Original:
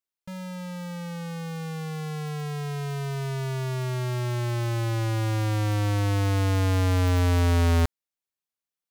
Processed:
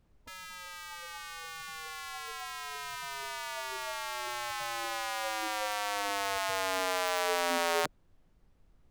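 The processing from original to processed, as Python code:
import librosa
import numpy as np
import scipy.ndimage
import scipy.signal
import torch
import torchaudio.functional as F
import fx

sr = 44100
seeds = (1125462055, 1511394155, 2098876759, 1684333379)

y = fx.spec_gate(x, sr, threshold_db=-15, keep='weak')
y = fx.dmg_noise_colour(y, sr, seeds[0], colour='brown', level_db=-64.0)
y = y * 10.0 ** (1.5 / 20.0)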